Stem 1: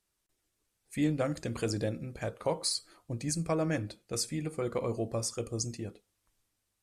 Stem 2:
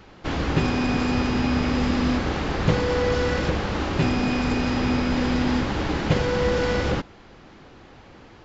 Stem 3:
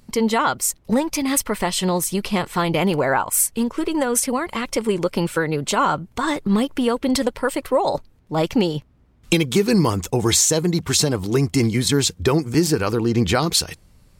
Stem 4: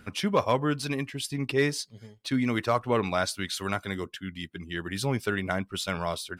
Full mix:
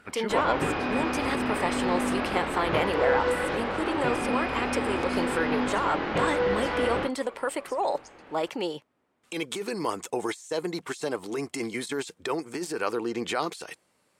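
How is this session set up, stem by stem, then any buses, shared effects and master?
-6.5 dB, 2.45 s, no send, high-pass 810 Hz
+2.0 dB, 0.05 s, no send, low-pass 5.2 kHz; chorus 0.53 Hz, delay 20 ms, depth 7.4 ms
-6.5 dB, 0.00 s, no send, Bessel high-pass 240 Hz, order 2; peaking EQ 8.7 kHz +11.5 dB 0.9 oct; compressor with a negative ratio -20 dBFS, ratio -1
+1.0 dB, 0.00 s, no send, auto duck -14 dB, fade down 1.70 s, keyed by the third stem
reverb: none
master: tone controls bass -13 dB, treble -13 dB

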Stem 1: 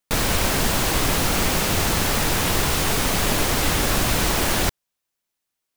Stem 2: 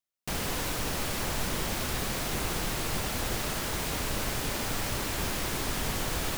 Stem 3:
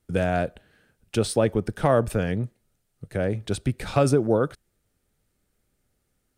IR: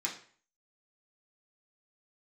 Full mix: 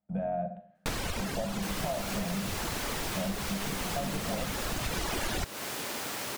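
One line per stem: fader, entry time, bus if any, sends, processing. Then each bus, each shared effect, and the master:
+1.0 dB, 0.75 s, no send, reverb removal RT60 1.9 s; treble shelf 11 kHz -9.5 dB; auto duck -10 dB, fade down 1.40 s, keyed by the third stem
-2.5 dB, 1.35 s, no send, Bessel high-pass 270 Hz, order 2
+2.5 dB, 0.00 s, send -4.5 dB, octave divider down 2 oct, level +4 dB; peak limiter -12 dBFS, peak gain reduction 7 dB; two resonant band-passes 360 Hz, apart 1.8 oct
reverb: on, RT60 0.45 s, pre-delay 3 ms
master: compression, threshold -29 dBFS, peak gain reduction 10.5 dB

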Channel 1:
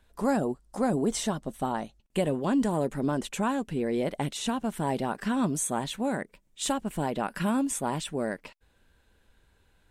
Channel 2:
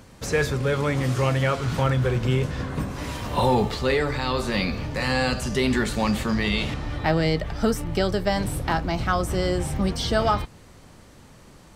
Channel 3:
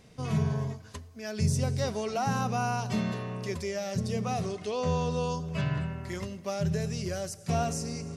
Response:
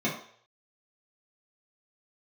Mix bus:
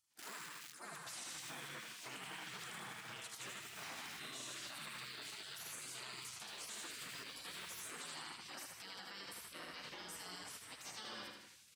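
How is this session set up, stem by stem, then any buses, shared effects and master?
-8.0 dB, 0.00 s, no bus, no send, echo send -3 dB, none
0.0 dB, 0.85 s, bus A, no send, echo send -15 dB, flange 0.4 Hz, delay 6.5 ms, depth 10 ms, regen -14%
-13.5 dB, 0.00 s, bus A, no send, echo send -15.5 dB, integer overflow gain 30.5 dB
bus A: 0.0 dB, compression 3:1, threshold -38 dBFS, peak gain reduction 14 dB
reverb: none
echo: feedback delay 78 ms, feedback 57%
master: high-pass 510 Hz 12 dB/octave; spectral gate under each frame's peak -15 dB weak; peak limiter -38.5 dBFS, peak gain reduction 9.5 dB

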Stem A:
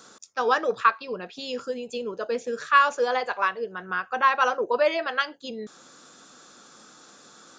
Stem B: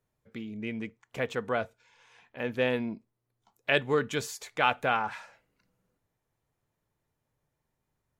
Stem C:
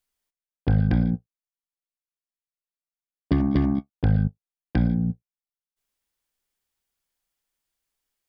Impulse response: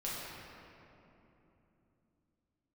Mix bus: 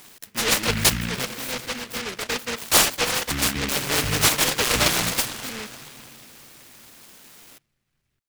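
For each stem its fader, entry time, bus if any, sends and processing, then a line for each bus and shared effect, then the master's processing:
0.0 dB, 0.00 s, no bus, no send, treble shelf 5.6 kHz +11 dB
-0.5 dB, 0.00 s, muted 1.25–3.10 s, bus A, send -3.5 dB, none
-7.5 dB, 0.00 s, bus A, no send, none
bus A: 0.0 dB, peak limiter -19.5 dBFS, peak gain reduction 9.5 dB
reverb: on, RT60 3.2 s, pre-delay 5 ms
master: delay time shaken by noise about 2 kHz, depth 0.43 ms

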